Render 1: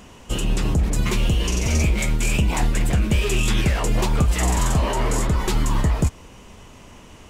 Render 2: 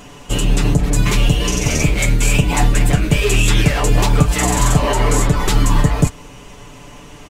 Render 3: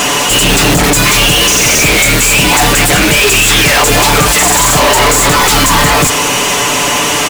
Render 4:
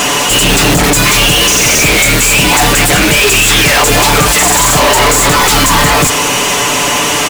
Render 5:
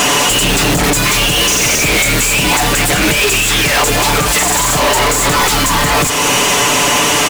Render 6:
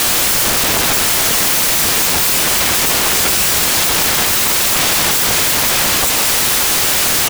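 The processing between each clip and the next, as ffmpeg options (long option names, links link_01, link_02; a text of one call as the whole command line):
ffmpeg -i in.wav -af "aecho=1:1:6.9:0.7,volume=5dB" out.wav
ffmpeg -i in.wav -filter_complex "[0:a]highshelf=frequency=7500:gain=11,asplit=2[link_01][link_02];[link_02]highpass=frequency=720:poles=1,volume=42dB,asoftclip=type=tanh:threshold=-1.5dB[link_03];[link_01][link_03]amix=inputs=2:normalize=0,lowpass=frequency=7200:poles=1,volume=-6dB" out.wav
ffmpeg -i in.wav -af anull out.wav
ffmpeg -i in.wav -af "alimiter=limit=-10.5dB:level=0:latency=1:release=483,volume=3dB" out.wav
ffmpeg -i in.wav -af "afreqshift=45,aeval=exprs='(mod(3.55*val(0)+1,2)-1)/3.55':channel_layout=same,volume=2dB" out.wav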